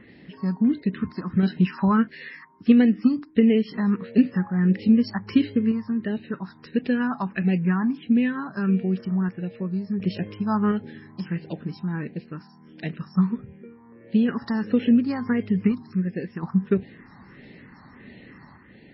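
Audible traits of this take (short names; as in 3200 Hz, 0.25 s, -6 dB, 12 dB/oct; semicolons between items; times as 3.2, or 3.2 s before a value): phasing stages 4, 1.5 Hz, lowest notch 470–1100 Hz; random-step tremolo 1.4 Hz; MP3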